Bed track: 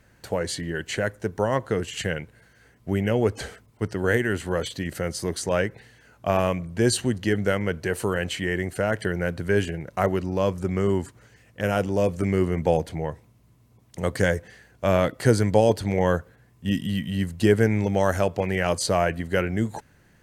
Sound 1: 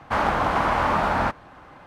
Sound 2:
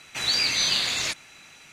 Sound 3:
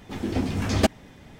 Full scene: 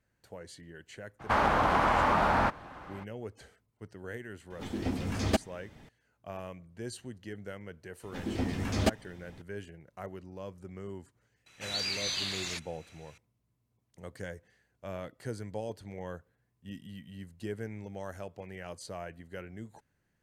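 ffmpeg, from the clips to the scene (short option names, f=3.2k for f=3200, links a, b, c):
-filter_complex "[3:a]asplit=2[a][b];[0:a]volume=-19.5dB[c];[1:a]acompressor=threshold=-24dB:ratio=6:attack=36:release=59:knee=6:detection=rms,atrim=end=1.86,asetpts=PTS-STARTPTS,volume=-0.5dB,afade=t=in:d=0.02,afade=t=out:st=1.84:d=0.02,adelay=1190[d];[a]atrim=end=1.39,asetpts=PTS-STARTPTS,volume=-7dB,afade=t=in:d=0.004:c=hsin,afade=t=out:st=1.386:d=0.004:c=hsin,adelay=4500[e];[b]atrim=end=1.39,asetpts=PTS-STARTPTS,volume=-6.5dB,afade=t=in:d=0.004:c=hsin,afade=t=out:st=1.386:d=0.004:c=hsin,adelay=8030[f];[2:a]atrim=end=1.72,asetpts=PTS-STARTPTS,volume=-10.5dB,afade=t=in:d=0.004:c=hsin,afade=t=out:st=1.716:d=0.004:c=hsin,adelay=505386S[g];[c][d][e][f][g]amix=inputs=5:normalize=0"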